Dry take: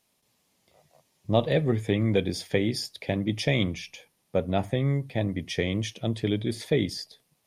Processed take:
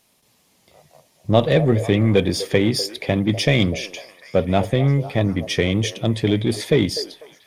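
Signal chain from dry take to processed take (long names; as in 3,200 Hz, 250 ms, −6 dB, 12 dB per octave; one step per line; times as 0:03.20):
in parallel at −5 dB: soft clipping −29 dBFS, distortion −5 dB
on the sum: echo through a band-pass that steps 248 ms, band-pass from 540 Hz, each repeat 0.7 octaves, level −10.5 dB
level +6 dB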